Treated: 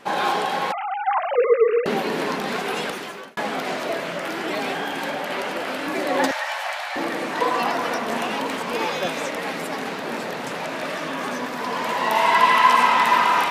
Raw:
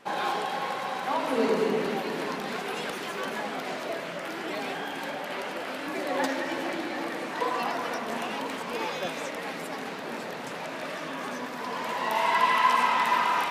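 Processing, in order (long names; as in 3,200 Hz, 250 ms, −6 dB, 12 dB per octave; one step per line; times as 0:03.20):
0:00.72–0:01.86: three sine waves on the formant tracks
0:02.79–0:03.37: fade out
0:06.31–0:06.96: Butterworth high-pass 640 Hz 48 dB per octave
level +7 dB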